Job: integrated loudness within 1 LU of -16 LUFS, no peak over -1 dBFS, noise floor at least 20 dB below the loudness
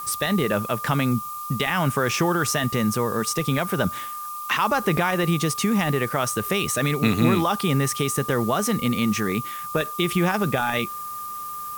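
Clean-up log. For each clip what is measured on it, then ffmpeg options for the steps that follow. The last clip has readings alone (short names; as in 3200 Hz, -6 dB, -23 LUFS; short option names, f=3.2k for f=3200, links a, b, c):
steady tone 1200 Hz; tone level -31 dBFS; noise floor -33 dBFS; noise floor target -43 dBFS; loudness -23.0 LUFS; peak -7.0 dBFS; loudness target -16.0 LUFS
-> -af "bandreject=f=1.2k:w=30"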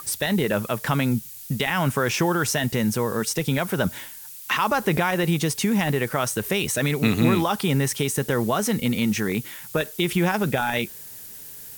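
steady tone none; noise floor -40 dBFS; noise floor target -44 dBFS
-> -af "afftdn=nr=6:nf=-40"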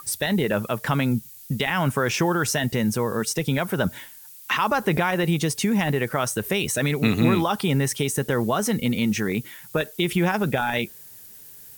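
noise floor -45 dBFS; loudness -23.5 LUFS; peak -7.0 dBFS; loudness target -16.0 LUFS
-> -af "volume=7.5dB,alimiter=limit=-1dB:level=0:latency=1"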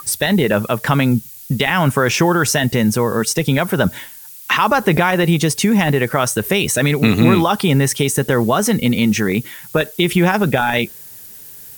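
loudness -16.0 LUFS; peak -1.0 dBFS; noise floor -37 dBFS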